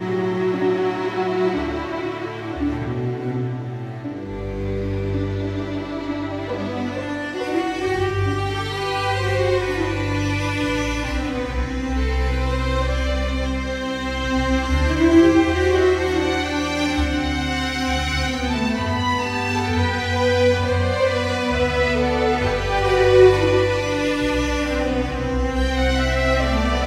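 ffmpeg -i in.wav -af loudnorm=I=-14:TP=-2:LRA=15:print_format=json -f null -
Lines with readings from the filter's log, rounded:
"input_i" : "-20.9",
"input_tp" : "-1.4",
"input_lra" : "6.8",
"input_thresh" : "-30.9",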